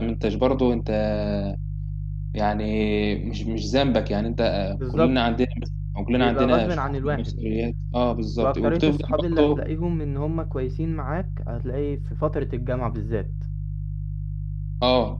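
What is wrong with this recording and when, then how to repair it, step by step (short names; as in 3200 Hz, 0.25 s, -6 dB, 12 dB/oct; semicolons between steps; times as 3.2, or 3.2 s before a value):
hum 50 Hz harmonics 3 -29 dBFS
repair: de-hum 50 Hz, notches 3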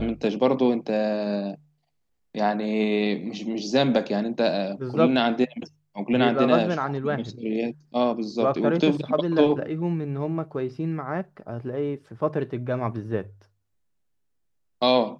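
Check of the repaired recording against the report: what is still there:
none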